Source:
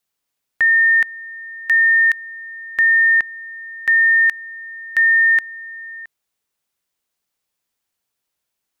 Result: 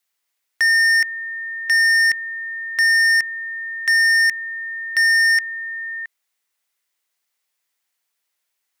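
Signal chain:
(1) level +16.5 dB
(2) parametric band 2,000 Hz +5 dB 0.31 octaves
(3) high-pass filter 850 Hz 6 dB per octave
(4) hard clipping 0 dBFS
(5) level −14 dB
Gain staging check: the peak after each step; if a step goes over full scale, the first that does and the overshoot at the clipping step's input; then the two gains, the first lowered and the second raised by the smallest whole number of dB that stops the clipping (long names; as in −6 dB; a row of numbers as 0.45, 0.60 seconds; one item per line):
+6.5, +10.0, +9.0, 0.0, −14.0 dBFS
step 1, 9.0 dB
step 1 +7.5 dB, step 5 −5 dB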